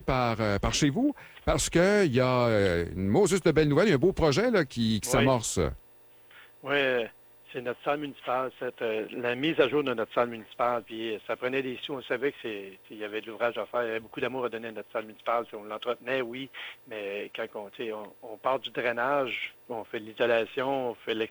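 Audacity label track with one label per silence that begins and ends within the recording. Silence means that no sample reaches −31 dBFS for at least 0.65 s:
5.720000	6.660000	silence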